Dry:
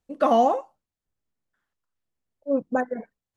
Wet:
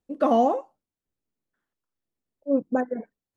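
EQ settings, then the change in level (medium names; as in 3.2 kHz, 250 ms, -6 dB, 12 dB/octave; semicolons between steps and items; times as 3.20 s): peaking EQ 310 Hz +8 dB 1.8 oct; -5.0 dB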